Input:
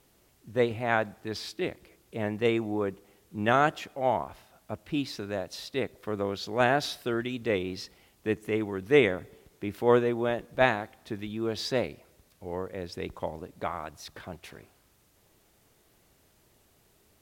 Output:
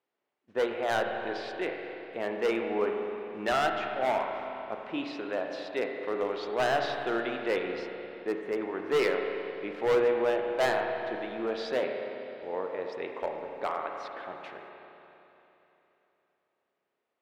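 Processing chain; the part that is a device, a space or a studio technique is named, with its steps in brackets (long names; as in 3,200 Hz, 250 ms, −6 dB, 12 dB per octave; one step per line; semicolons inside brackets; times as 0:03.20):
walkie-talkie (band-pass filter 410–2,600 Hz; hard clipping −24.5 dBFS, distortion −7 dB; noise gate −58 dBFS, range −18 dB)
0:07.79–0:08.62: parametric band 2,700 Hz −8.5 dB 1.2 octaves
spring reverb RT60 3.3 s, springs 31/43 ms, chirp 55 ms, DRR 2.5 dB
level +2 dB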